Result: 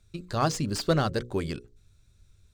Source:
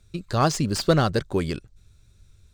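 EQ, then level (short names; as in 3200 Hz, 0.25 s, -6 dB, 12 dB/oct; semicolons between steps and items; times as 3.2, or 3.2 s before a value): notches 60/120/180/240/300/360/420/480/540 Hz; -4.5 dB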